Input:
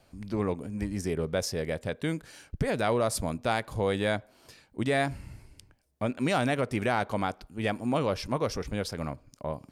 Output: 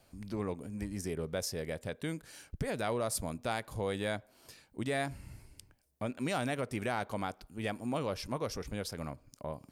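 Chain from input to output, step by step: high shelf 8100 Hz +9 dB; in parallel at -2.5 dB: compressor, threshold -38 dBFS, peak gain reduction 15 dB; on the sum: gain -8.5 dB

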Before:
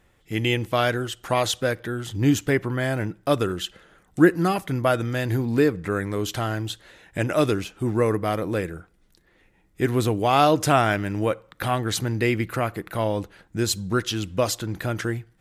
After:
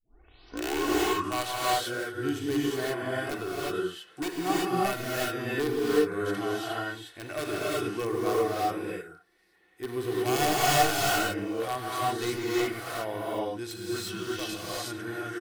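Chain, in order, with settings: tape start at the beginning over 1.23 s; HPF 520 Hz 6 dB/oct; notch 6900 Hz, Q 7.6; wrapped overs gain 14 dB; comb 2.7 ms, depth 33%; harmonic-percussive split percussive -13 dB; non-linear reverb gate 0.39 s rising, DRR -6 dB; gain -5 dB

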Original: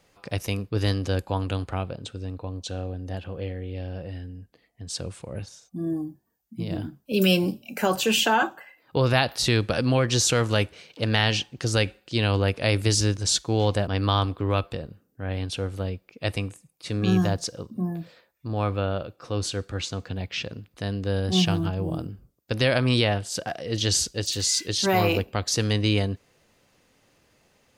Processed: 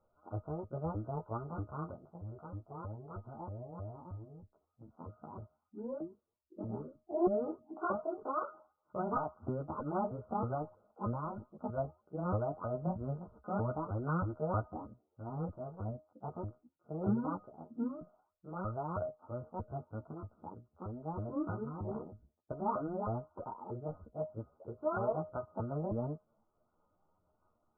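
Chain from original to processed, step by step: repeated pitch sweeps +11.5 st, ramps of 0.316 s; brick-wall FIR low-pass 1500 Hz; resonator 620 Hz, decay 0.27 s, harmonics all, mix 80%; chorus voices 6, 0.27 Hz, delay 11 ms, depth 2.5 ms; noise-modulated level, depth 55%; gain +7.5 dB

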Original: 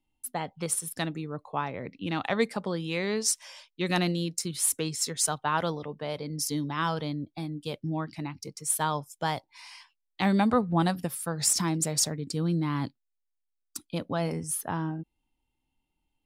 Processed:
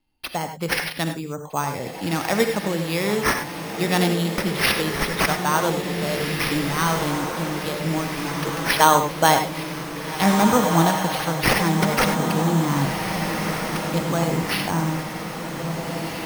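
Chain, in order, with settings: spectral gain 8.4–9.63, 220–4800 Hz +8 dB; sample-and-hold 6×; on a send: diffused feedback echo 1.709 s, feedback 57%, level -5.5 dB; on the sum: non-linear reverb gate 0.12 s rising, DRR 6.5 dB; gain +5.5 dB

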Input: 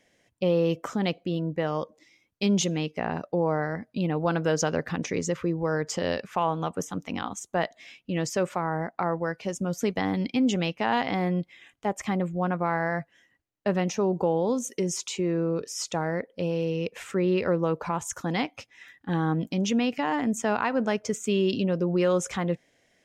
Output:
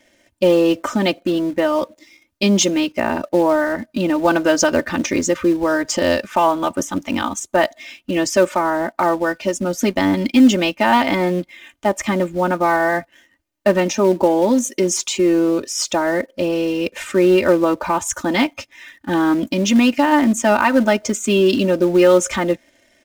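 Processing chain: comb 3.3 ms, depth 95%; in parallel at -11 dB: companded quantiser 4-bit; on the sum: gain +6 dB

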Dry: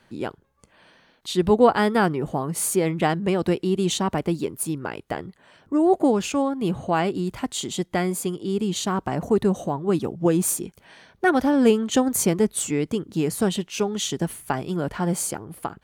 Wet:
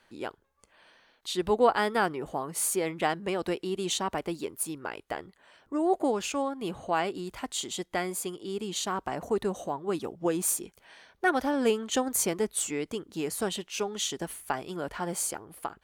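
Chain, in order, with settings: bell 140 Hz -12 dB 2.2 oct; gain -3.5 dB

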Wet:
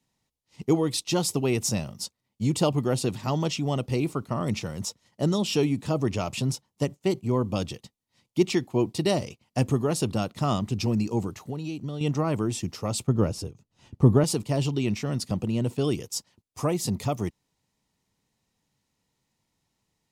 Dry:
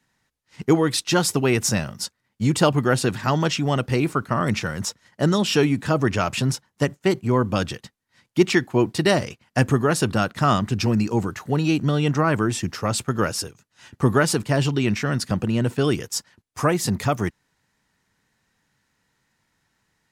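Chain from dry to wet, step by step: bell 1600 Hz -15 dB 0.66 oct; 11.33–12.01 compressor 6:1, threshold -26 dBFS, peak gain reduction 9.5 dB; 13.07–14.24 tilt -2.5 dB/oct; gain -4.5 dB

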